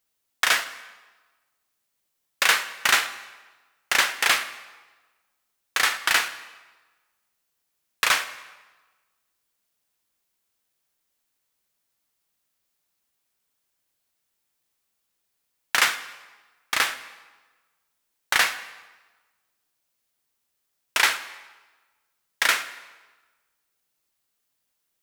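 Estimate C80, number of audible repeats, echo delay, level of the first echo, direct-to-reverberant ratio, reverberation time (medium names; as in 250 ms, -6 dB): 14.5 dB, no echo, no echo, no echo, 11.0 dB, 1.3 s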